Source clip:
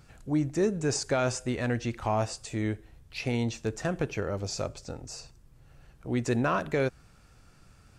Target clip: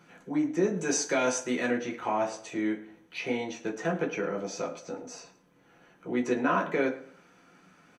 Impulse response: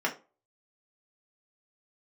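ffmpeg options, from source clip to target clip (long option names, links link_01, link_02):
-filter_complex "[0:a]asettb=1/sr,asplit=3[link_01][link_02][link_03];[link_01]atrim=end=0.774[link_04];[link_02]atrim=start=0.77:end=1.71,asetpts=PTS-STARTPTS,afade=type=in:duration=0.004:curve=qsin,afade=type=out:start_time=0.936:duration=0.004:curve=qsin,highshelf=frequency=3500:gain=11.5[link_05];[link_03]atrim=start=1.706[link_06];[link_04][link_05]acrossfade=duration=0.004:curve1=hsin:curve2=qsin[link_07];[link_07][link_06]acrossfade=duration=0.004:curve1=qsin:curve2=hsin,asplit=2[link_08][link_09];[link_09]acompressor=threshold=-40dB:ratio=6,volume=-3dB[link_10];[link_08][link_10]amix=inputs=2:normalize=0,asplit=2[link_11][link_12];[link_12]adelay=107,lowpass=frequency=3500:poles=1,volume=-15.5dB,asplit=2[link_13][link_14];[link_14]adelay=107,lowpass=frequency=3500:poles=1,volume=0.34,asplit=2[link_15][link_16];[link_16]adelay=107,lowpass=frequency=3500:poles=1,volume=0.34[link_17];[link_11][link_13][link_15][link_17]amix=inputs=4:normalize=0[link_18];[1:a]atrim=start_sample=2205,asetrate=48510,aresample=44100[link_19];[link_18][link_19]afir=irnorm=-1:irlink=0,volume=-8.5dB"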